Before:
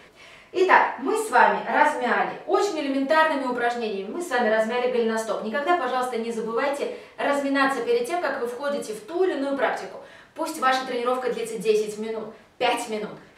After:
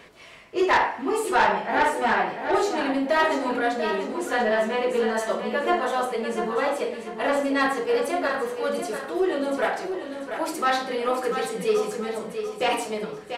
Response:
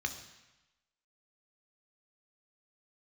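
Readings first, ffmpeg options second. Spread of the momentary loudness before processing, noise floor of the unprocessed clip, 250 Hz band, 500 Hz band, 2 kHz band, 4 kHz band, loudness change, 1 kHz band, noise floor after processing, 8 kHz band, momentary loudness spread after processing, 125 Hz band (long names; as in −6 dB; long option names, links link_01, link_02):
12 LU, −50 dBFS, 0.0 dB, −0.5 dB, −1.5 dB, 0.0 dB, −1.0 dB, −1.5 dB, −40 dBFS, +0.5 dB, 8 LU, can't be measured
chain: -af "asoftclip=type=tanh:threshold=-13.5dB,aecho=1:1:691|1382|2073|2764:0.398|0.143|0.0516|0.0186"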